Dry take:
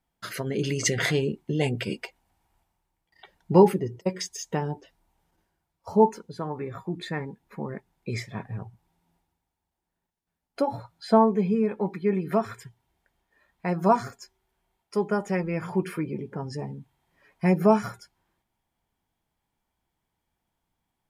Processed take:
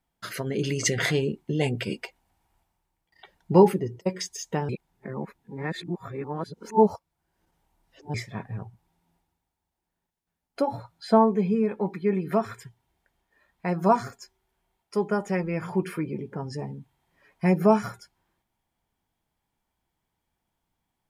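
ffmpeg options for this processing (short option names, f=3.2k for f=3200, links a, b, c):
-filter_complex "[0:a]asplit=3[a][b][c];[a]atrim=end=4.692[d];[b]atrim=start=4.688:end=8.142,asetpts=PTS-STARTPTS,areverse[e];[c]atrim=start=8.138[f];[d][e]acrossfade=d=0.004:c1=hsin:c2=hsin[g];[g][f]acrossfade=d=0.004:c1=hsin:c2=hsin"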